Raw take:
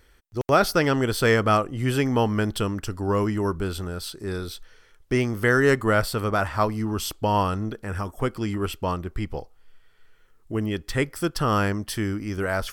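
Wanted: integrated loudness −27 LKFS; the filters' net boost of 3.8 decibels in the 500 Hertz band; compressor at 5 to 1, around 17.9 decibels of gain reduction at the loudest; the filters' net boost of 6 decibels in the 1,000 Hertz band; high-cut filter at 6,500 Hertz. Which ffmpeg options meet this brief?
ffmpeg -i in.wav -af "lowpass=6500,equalizer=frequency=500:width_type=o:gain=3,equalizer=frequency=1000:width_type=o:gain=7,acompressor=threshold=-31dB:ratio=5,volume=7.5dB" out.wav

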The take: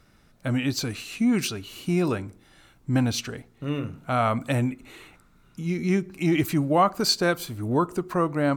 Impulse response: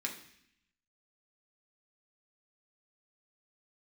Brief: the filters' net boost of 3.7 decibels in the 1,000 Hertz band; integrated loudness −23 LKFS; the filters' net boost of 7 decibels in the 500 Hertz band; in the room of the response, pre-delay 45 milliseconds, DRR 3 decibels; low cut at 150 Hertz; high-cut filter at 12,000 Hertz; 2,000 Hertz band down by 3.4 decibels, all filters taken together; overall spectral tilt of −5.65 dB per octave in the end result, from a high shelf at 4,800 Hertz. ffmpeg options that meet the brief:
-filter_complex "[0:a]highpass=150,lowpass=12000,equalizer=frequency=500:width_type=o:gain=8.5,equalizer=frequency=1000:width_type=o:gain=3.5,equalizer=frequency=2000:width_type=o:gain=-5.5,highshelf=frequency=4800:gain=-6,asplit=2[link_01][link_02];[1:a]atrim=start_sample=2205,adelay=45[link_03];[link_02][link_03]afir=irnorm=-1:irlink=0,volume=-5dB[link_04];[link_01][link_04]amix=inputs=2:normalize=0,volume=-1.5dB"

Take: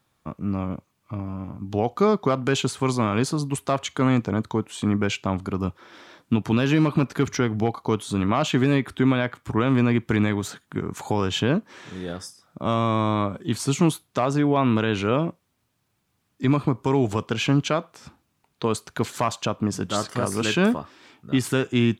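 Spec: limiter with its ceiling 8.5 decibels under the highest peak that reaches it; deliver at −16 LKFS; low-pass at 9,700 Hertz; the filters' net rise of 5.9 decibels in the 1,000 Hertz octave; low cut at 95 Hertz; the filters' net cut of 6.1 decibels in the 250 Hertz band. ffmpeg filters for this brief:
ffmpeg -i in.wav -af "highpass=95,lowpass=9700,equalizer=frequency=250:width_type=o:gain=-8,equalizer=frequency=1000:width_type=o:gain=7.5,volume=12.5dB,alimiter=limit=-2dB:level=0:latency=1" out.wav

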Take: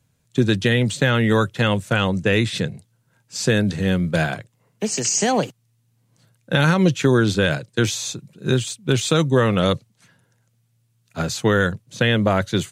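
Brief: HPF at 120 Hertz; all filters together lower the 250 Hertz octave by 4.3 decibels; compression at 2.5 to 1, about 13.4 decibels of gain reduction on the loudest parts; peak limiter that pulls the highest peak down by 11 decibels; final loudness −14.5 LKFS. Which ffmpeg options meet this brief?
ffmpeg -i in.wav -af "highpass=120,equalizer=frequency=250:width_type=o:gain=-5.5,acompressor=threshold=-36dB:ratio=2.5,volume=23.5dB,alimiter=limit=-4dB:level=0:latency=1" out.wav

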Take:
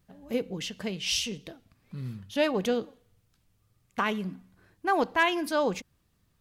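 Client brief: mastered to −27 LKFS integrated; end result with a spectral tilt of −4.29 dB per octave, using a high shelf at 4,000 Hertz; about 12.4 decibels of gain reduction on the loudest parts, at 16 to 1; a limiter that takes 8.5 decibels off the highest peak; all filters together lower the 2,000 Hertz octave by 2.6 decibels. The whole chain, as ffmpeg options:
ffmpeg -i in.wav -af "equalizer=frequency=2000:width_type=o:gain=-5.5,highshelf=frequency=4000:gain=8.5,acompressor=threshold=-33dB:ratio=16,volume=14dB,alimiter=limit=-17dB:level=0:latency=1" out.wav

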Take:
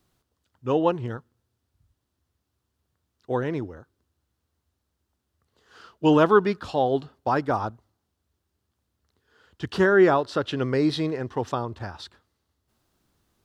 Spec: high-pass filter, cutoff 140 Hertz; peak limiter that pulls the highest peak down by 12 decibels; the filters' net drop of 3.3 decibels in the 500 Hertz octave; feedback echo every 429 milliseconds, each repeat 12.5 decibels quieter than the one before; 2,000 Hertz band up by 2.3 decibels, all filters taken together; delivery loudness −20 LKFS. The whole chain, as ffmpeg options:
ffmpeg -i in.wav -af "highpass=140,equalizer=frequency=500:width_type=o:gain=-4.5,equalizer=frequency=2000:width_type=o:gain=3.5,alimiter=limit=-16.5dB:level=0:latency=1,aecho=1:1:429|858|1287:0.237|0.0569|0.0137,volume=10dB" out.wav

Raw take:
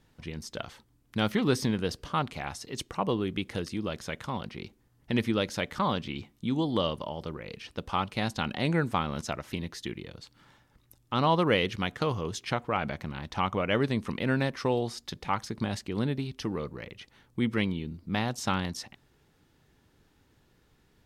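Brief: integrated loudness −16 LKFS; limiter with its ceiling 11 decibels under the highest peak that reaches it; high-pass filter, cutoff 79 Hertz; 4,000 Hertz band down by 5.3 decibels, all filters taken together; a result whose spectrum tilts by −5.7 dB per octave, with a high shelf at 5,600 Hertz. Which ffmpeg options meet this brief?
ffmpeg -i in.wav -af "highpass=79,equalizer=frequency=4000:width_type=o:gain=-4.5,highshelf=frequency=5600:gain=-8,volume=19dB,alimiter=limit=-3dB:level=0:latency=1" out.wav

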